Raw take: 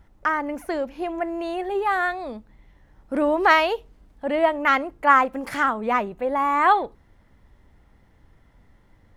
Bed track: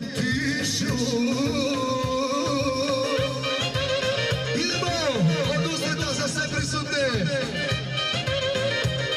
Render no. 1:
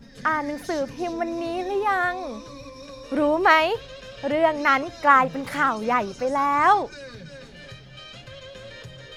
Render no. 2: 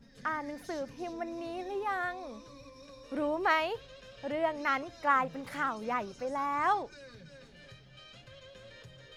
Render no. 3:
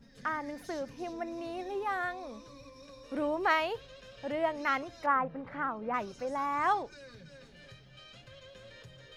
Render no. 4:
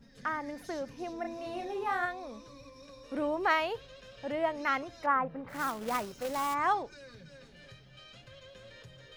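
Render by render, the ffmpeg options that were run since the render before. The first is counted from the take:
-filter_complex "[1:a]volume=0.15[s0];[0:a][s0]amix=inputs=2:normalize=0"
-af "volume=0.282"
-filter_complex "[0:a]asettb=1/sr,asplit=3[s0][s1][s2];[s0]atrim=end=5.064[s3];[s1]atrim=start=5.06:end=5.94,asetpts=PTS-STARTPTS,afade=t=in:d=0.004:c=qsin,afade=t=out:st=0.876:d=0.004:c=qsin,lowpass=1600[s4];[s2]atrim=start=5.936[s5];[s3][s4]acrossfade=d=0.004:c1=hsin:c2=qsin[s6];[s6][s5]acrossfade=d=0.004:c1=qsin:c2=hsin"
-filter_complex "[0:a]asettb=1/sr,asplit=3[s0][s1][s2];[s0]atrim=end=1.214[s3];[s1]atrim=start=1.21:end=2.06,asetpts=PTS-STARTPTS,afade=t=in:d=0.004:c=qsin,afade=t=out:st=0.846:d=0.004:c=qsin,asplit=2[s4][s5];[s5]adelay=34,volume=0.631[s6];[s4][s6]amix=inputs=2:normalize=0,atrim=end_sample=37485[s7];[s2]atrim=start=2.056[s8];[s3][s7]acrossfade=d=0.004:c1=hsin:c2=qsin[s9];[s9][s8]acrossfade=d=0.004:c1=qsin:c2=hsin,asplit=3[s10][s11][s12];[s10]afade=t=out:st=5.48:d=0.02[s13];[s11]acrusher=bits=2:mode=log:mix=0:aa=0.000001,afade=t=in:st=5.48:d=0.02,afade=t=out:st=6.53:d=0.02[s14];[s12]afade=t=in:st=6.53:d=0.02[s15];[s13][s14][s15]amix=inputs=3:normalize=0"

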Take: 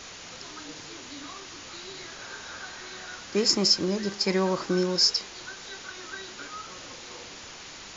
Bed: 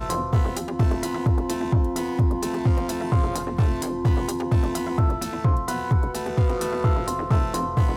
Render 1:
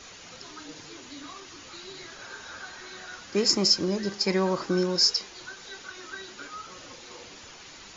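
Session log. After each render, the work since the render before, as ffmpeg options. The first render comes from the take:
-af "afftdn=nr=6:nf=-44"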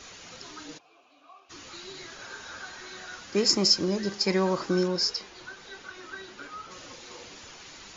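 -filter_complex "[0:a]asplit=3[s0][s1][s2];[s0]afade=t=out:st=0.77:d=0.02[s3];[s1]asplit=3[s4][s5][s6];[s4]bandpass=f=730:t=q:w=8,volume=1[s7];[s5]bandpass=f=1090:t=q:w=8,volume=0.501[s8];[s6]bandpass=f=2440:t=q:w=8,volume=0.355[s9];[s7][s8][s9]amix=inputs=3:normalize=0,afade=t=in:st=0.77:d=0.02,afade=t=out:st=1.49:d=0.02[s10];[s2]afade=t=in:st=1.49:d=0.02[s11];[s3][s10][s11]amix=inputs=3:normalize=0,asettb=1/sr,asplit=3[s12][s13][s14];[s12]atrim=end=4.884[s15];[s13]atrim=start=4.88:end=6.71,asetpts=PTS-STARTPTS,afade=t=in:d=0.004:c=qsin,afade=t=out:st=1.826:d=0.004:c=qsin,lowpass=f=3100:p=1[s16];[s14]atrim=start=6.706[s17];[s15][s16]acrossfade=d=0.004:c1=hsin:c2=qsin[s18];[s18][s17]acrossfade=d=0.004:c1=qsin:c2=hsin"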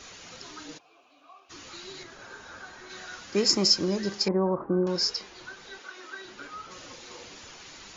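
-filter_complex "[0:a]asettb=1/sr,asplit=3[s0][s1][s2];[s0]atrim=end=2.034[s3];[s1]atrim=start=2.03:end=2.9,asetpts=PTS-STARTPTS,afade=t=in:d=0.004:c=qsin,afade=t=out:st=0.866:d=0.004:c=qsin,equalizer=f=5000:w=0.37:g=-7[s4];[s2]atrim=start=2.896[s5];[s3][s4]acrossfade=d=0.004:c1=hsin:c2=qsin[s6];[s6][s5]acrossfade=d=0.004:c1=qsin:c2=hsin,asettb=1/sr,asplit=3[s7][s8][s9];[s7]atrim=end=4.284[s10];[s8]atrim=start=4.28:end=4.87,asetpts=PTS-STARTPTS,afade=t=in:d=0.004:c=qsin,afade=t=out:st=0.586:d=0.004:c=qsin,lowpass=f=1100:w=0.5412,lowpass=f=1100:w=1.3066[s11];[s9]atrim=start=4.866[s12];[s10][s11]acrossfade=d=0.004:c1=hsin:c2=qsin[s13];[s13][s12]acrossfade=d=0.004:c1=qsin:c2=hsin,asettb=1/sr,asplit=3[s14][s15][s16];[s14]atrim=end=5.784[s17];[s15]atrim=start=5.78:end=6.25,asetpts=PTS-STARTPTS,afade=t=in:d=0.004:c=qsin,afade=t=out:st=0.466:d=0.004:c=qsin,highpass=310[s18];[s16]atrim=start=6.246[s19];[s17][s18]acrossfade=d=0.004:c1=hsin:c2=qsin[s20];[s20][s19]acrossfade=d=0.004:c1=qsin:c2=hsin"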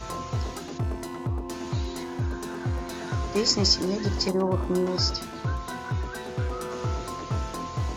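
-filter_complex "[1:a]volume=0.376[s0];[0:a][s0]amix=inputs=2:normalize=0"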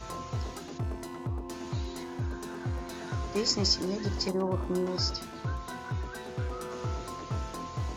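-af "volume=0.562"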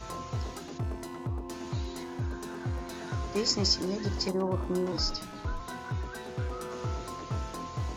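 -filter_complex "[0:a]asettb=1/sr,asplit=3[s0][s1][s2];[s0]atrim=end=4.924[s3];[s1]atrim=start=4.92:end=5.6,asetpts=PTS-STARTPTS,afade=t=in:d=0.004:c=qsin,afade=t=out:st=0.676:d=0.004:c=qsin,afreqshift=-41[s4];[s2]atrim=start=5.596[s5];[s3][s4]acrossfade=d=0.004:c1=hsin:c2=qsin[s6];[s6][s5]acrossfade=d=0.004:c1=qsin:c2=hsin"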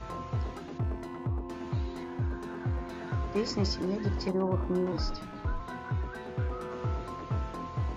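-af "bass=f=250:g=2,treble=f=4000:g=-14"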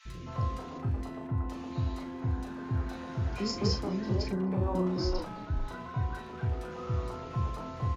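-filter_complex "[0:a]asplit=2[s0][s1];[s1]adelay=38,volume=0.447[s2];[s0][s2]amix=inputs=2:normalize=0,acrossover=split=360|1700[s3][s4][s5];[s3]adelay=50[s6];[s4]adelay=260[s7];[s6][s7][s5]amix=inputs=3:normalize=0"

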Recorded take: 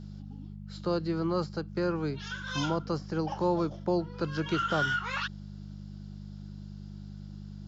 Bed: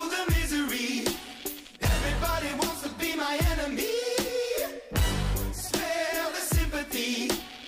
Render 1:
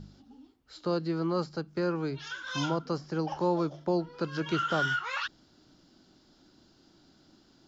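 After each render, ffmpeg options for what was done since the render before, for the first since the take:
-af "bandreject=f=50:t=h:w=4,bandreject=f=100:t=h:w=4,bandreject=f=150:t=h:w=4,bandreject=f=200:t=h:w=4"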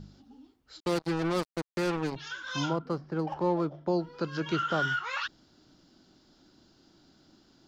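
-filter_complex "[0:a]asettb=1/sr,asplit=3[s0][s1][s2];[s0]atrim=end=0.804[s3];[s1]atrim=start=0.8:end=2.16,asetpts=PTS-STARTPTS,afade=t=in:d=0.004:c=qsin,afade=t=out:st=1.356:d=0.004:c=qsin,acrusher=bits=4:mix=0:aa=0.5[s4];[s2]atrim=start=2.156[s5];[s3][s4]acrossfade=d=0.004:c1=hsin:c2=qsin[s6];[s6][s5]acrossfade=d=0.004:c1=qsin:c2=hsin,asettb=1/sr,asplit=3[s7][s8][s9];[s7]atrim=end=2.734[s10];[s8]atrim=start=2.73:end=3.87,asetpts=PTS-STARTPTS,afade=t=in:d=0.004:c=qsin,afade=t=out:st=1.136:d=0.004:c=qsin,adynamicsmooth=sensitivity=5.5:basefreq=2000[s11];[s9]atrim=start=3.866[s12];[s10][s11]acrossfade=d=0.004:c1=hsin:c2=qsin[s13];[s13][s12]acrossfade=d=0.004:c1=qsin:c2=hsin,asettb=1/sr,asplit=3[s14][s15][s16];[s14]atrim=end=4.564[s17];[s15]atrim=start=4.56:end=4.97,asetpts=PTS-STARTPTS,afade=t=in:d=0.004:c=qsin,afade=t=out:st=0.406:d=0.004:c=qsin,highshelf=f=4900:g=-5[s18];[s16]atrim=start=4.966[s19];[s17][s18]acrossfade=d=0.004:c1=hsin:c2=qsin[s20];[s20][s19]acrossfade=d=0.004:c1=qsin:c2=hsin"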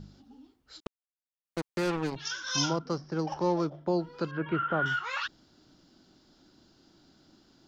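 -filter_complex "[0:a]asettb=1/sr,asplit=3[s0][s1][s2];[s0]atrim=end=2.254[s3];[s1]atrim=start=2.25:end=3.7,asetpts=PTS-STARTPTS,afade=t=in:d=0.004:c=qsin,afade=t=out:st=1.446:d=0.004:c=qsin,lowpass=f=5700:t=q:w=7.4[s4];[s2]atrim=start=3.696[s5];[s3][s4]acrossfade=d=0.004:c1=hsin:c2=qsin[s6];[s6][s5]acrossfade=d=0.004:c1=qsin:c2=hsin,asettb=1/sr,asplit=3[s7][s8][s9];[s7]atrim=end=4.314[s10];[s8]atrim=start=4.31:end=4.86,asetpts=PTS-STARTPTS,afade=t=in:d=0.004:c=qsin,afade=t=out:st=0.546:d=0.004:c=qsin,lowpass=f=2300:w=0.5412,lowpass=f=2300:w=1.3066[s11];[s9]atrim=start=4.856[s12];[s10][s11]acrossfade=d=0.004:c1=hsin:c2=qsin[s13];[s13][s12]acrossfade=d=0.004:c1=qsin:c2=hsin,asplit=3[s14][s15][s16];[s14]atrim=end=0.87,asetpts=PTS-STARTPTS,afade=t=out:st=0.866:d=0.004:c=hsin[s17];[s15]atrim=start=0.87:end=1.45,asetpts=PTS-STARTPTS,volume=0[s18];[s16]atrim=start=1.45,asetpts=PTS-STARTPTS,afade=t=in:d=0.004:c=hsin[s19];[s17][s18][s19]concat=n=3:v=0:a=1"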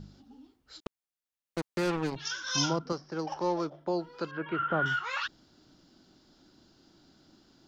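-filter_complex "[0:a]asettb=1/sr,asplit=3[s0][s1][s2];[s0]atrim=end=2.924[s3];[s1]atrim=start=2.92:end=4.6,asetpts=PTS-STARTPTS,afade=t=in:d=0.004:c=qsin,afade=t=out:st=1.676:d=0.004:c=qsin,equalizer=f=86:w=0.43:g=-10.5[s4];[s2]atrim=start=4.596[s5];[s3][s4]acrossfade=d=0.004:c1=hsin:c2=qsin[s6];[s6][s5]acrossfade=d=0.004:c1=qsin:c2=hsin"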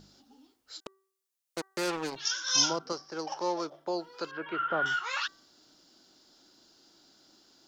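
-af "bass=f=250:g=-14,treble=f=4000:g=8,bandreject=f=385.1:t=h:w=4,bandreject=f=770.2:t=h:w=4,bandreject=f=1155.3:t=h:w=4,bandreject=f=1540.4:t=h:w=4,bandreject=f=1925.5:t=h:w=4"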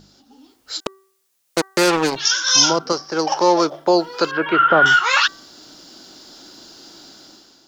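-filter_complex "[0:a]asplit=2[s0][s1];[s1]alimiter=limit=0.0708:level=0:latency=1,volume=1.19[s2];[s0][s2]amix=inputs=2:normalize=0,dynaudnorm=f=220:g=5:m=3.98"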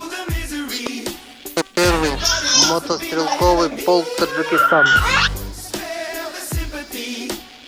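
-filter_complex "[1:a]volume=1.26[s0];[0:a][s0]amix=inputs=2:normalize=0"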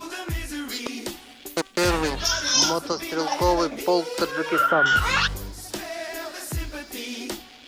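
-af "volume=0.501"

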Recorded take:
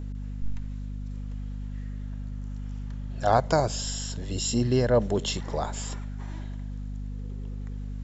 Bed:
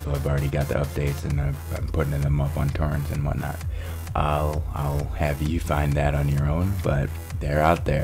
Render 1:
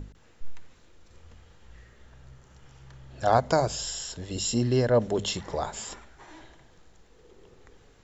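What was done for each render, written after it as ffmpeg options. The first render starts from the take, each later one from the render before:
-af "bandreject=f=50:t=h:w=6,bandreject=f=100:t=h:w=6,bandreject=f=150:t=h:w=6,bandreject=f=200:t=h:w=6,bandreject=f=250:t=h:w=6"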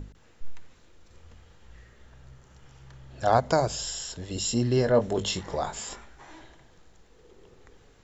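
-filter_complex "[0:a]asettb=1/sr,asplit=3[s0][s1][s2];[s0]atrim=end=4.754[s3];[s1]atrim=start=4.75:end=6.35,asetpts=PTS-STARTPTS,afade=t=in:d=0.004:c=qsin,afade=t=out:st=1.596:d=0.004:c=qsin,asplit=2[s4][s5];[s5]adelay=21,volume=0.422[s6];[s4][s6]amix=inputs=2:normalize=0,atrim=end_sample=70560[s7];[s2]atrim=start=6.346[s8];[s3][s7]acrossfade=d=0.004:c1=hsin:c2=qsin[s9];[s9][s8]acrossfade=d=0.004:c1=qsin:c2=hsin"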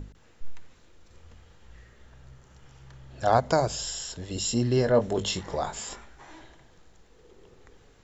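-af anull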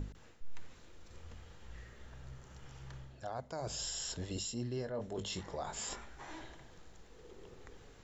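-af "areverse,acompressor=threshold=0.0224:ratio=12,areverse,alimiter=level_in=2:limit=0.0631:level=0:latency=1:release=389,volume=0.501"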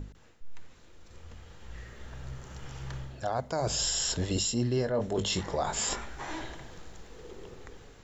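-af "dynaudnorm=f=730:g=5:m=3.35"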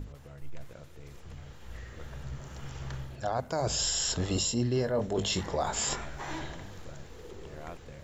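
-filter_complex "[1:a]volume=0.0531[s0];[0:a][s0]amix=inputs=2:normalize=0"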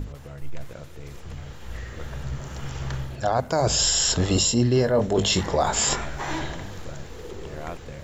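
-af "volume=2.66"

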